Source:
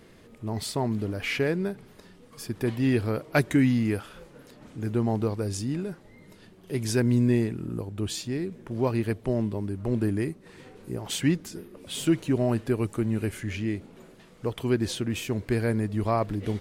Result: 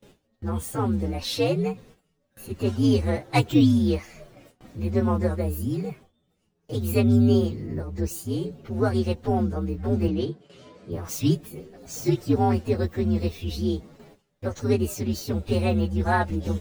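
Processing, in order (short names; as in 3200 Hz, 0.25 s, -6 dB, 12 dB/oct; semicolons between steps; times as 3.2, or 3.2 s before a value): inharmonic rescaling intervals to 125%; gate with hold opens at -43 dBFS; 10.08–10.92 BPF 110–6500 Hz; gain +4.5 dB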